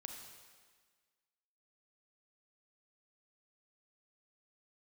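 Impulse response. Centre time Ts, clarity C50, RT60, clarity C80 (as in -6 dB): 50 ms, 4.0 dB, 1.5 s, 5.5 dB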